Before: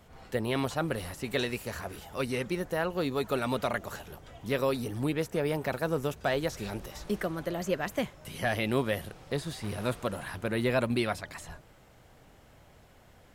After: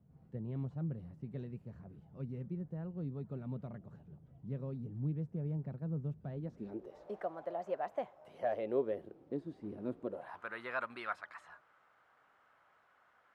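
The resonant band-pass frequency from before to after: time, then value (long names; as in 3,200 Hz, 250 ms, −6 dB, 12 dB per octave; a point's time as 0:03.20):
resonant band-pass, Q 3
0:06.32 150 Hz
0:07.18 720 Hz
0:08.22 720 Hz
0:09.29 300 Hz
0:10.03 300 Hz
0:10.44 1,300 Hz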